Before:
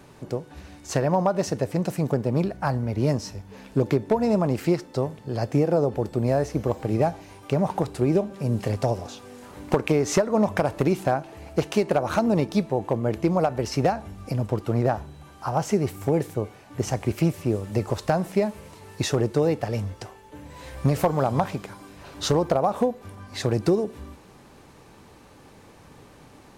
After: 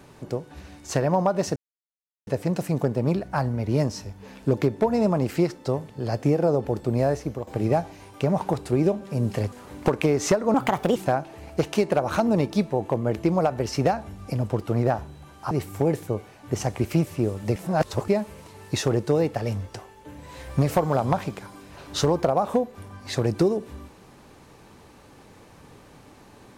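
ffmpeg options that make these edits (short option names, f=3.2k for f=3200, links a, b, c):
-filter_complex "[0:a]asplit=9[a][b][c][d][e][f][g][h][i];[a]atrim=end=1.56,asetpts=PTS-STARTPTS,afade=t=out:st=1.556:d=0.004:c=hsin,apad=pad_dur=0.71[j];[b]atrim=start=1.56:end=6.76,asetpts=PTS-STARTPTS,afade=t=in:d=0.004:c=hsin,afade=t=out:st=4.84:d=0.36:silence=0.266073[k];[c]atrim=start=6.76:end=8.812,asetpts=PTS-STARTPTS,afade=t=in:d=0.004:c=hsin:silence=0.266073[l];[d]atrim=start=9.378:end=10.404[m];[e]atrim=start=10.4:end=10.95,asetpts=PTS-STARTPTS,asetrate=57771,aresample=44100,atrim=end_sample=18515,asetpts=PTS-STARTPTS[n];[f]atrim=start=10.946:end=15.502[o];[g]atrim=start=15.778:end=17.832[p];[h]atrim=start=17.828:end=18.352,asetpts=PTS-STARTPTS,areverse[q];[i]atrim=start=18.348[r];[j][k][l]concat=n=3:v=0:a=1[s];[s][m]acrossfade=d=0.004:c1=hsin:c2=hsin[t];[t][n]acrossfade=d=0.004:c1=hsin:c2=hsin[u];[u][o]acrossfade=d=0.004:c1=hsin:c2=hsin[v];[v][p]acrossfade=d=0.004:c1=hsin:c2=hsin[w];[w][q]acrossfade=d=0.004:c1=hsin:c2=hsin[x];[x][r]acrossfade=d=0.004:c1=hsin:c2=hsin"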